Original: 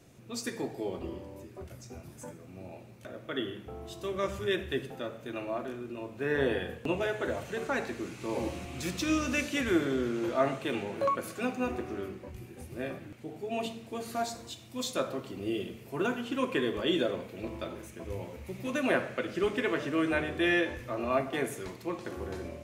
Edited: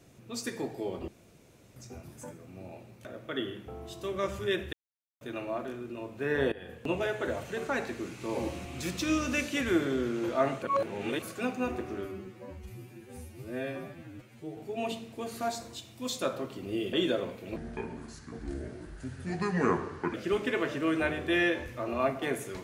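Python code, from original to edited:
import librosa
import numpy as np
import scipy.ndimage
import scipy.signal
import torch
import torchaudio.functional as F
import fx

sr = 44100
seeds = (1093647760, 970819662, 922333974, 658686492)

y = fx.edit(x, sr, fx.room_tone_fill(start_s=1.08, length_s=0.68),
    fx.silence(start_s=4.73, length_s=0.48),
    fx.fade_in_from(start_s=6.52, length_s=0.4, floor_db=-19.5),
    fx.reverse_span(start_s=10.62, length_s=0.6),
    fx.stretch_span(start_s=12.05, length_s=1.26, factor=2.0),
    fx.cut(start_s=15.67, length_s=1.17),
    fx.speed_span(start_s=17.47, length_s=1.78, speed=0.69), tone=tone)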